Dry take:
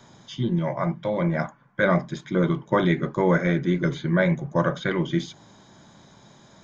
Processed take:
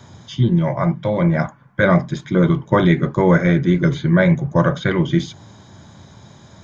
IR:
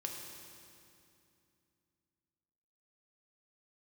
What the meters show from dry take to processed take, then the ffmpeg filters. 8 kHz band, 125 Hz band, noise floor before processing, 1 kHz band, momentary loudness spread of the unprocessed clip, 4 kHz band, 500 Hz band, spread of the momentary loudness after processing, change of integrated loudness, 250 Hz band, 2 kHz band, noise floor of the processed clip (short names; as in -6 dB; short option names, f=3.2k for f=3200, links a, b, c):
n/a, +9.0 dB, -53 dBFS, +5.0 dB, 7 LU, +5.0 dB, +5.5 dB, 6 LU, +7.0 dB, +7.5 dB, +5.0 dB, -46 dBFS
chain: -af "equalizer=f=89:w=1.5:g=14,volume=5dB"